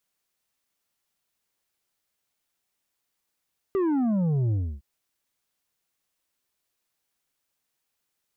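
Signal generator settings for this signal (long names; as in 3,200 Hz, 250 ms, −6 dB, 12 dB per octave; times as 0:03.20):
bass drop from 400 Hz, over 1.06 s, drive 6.5 dB, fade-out 0.29 s, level −22 dB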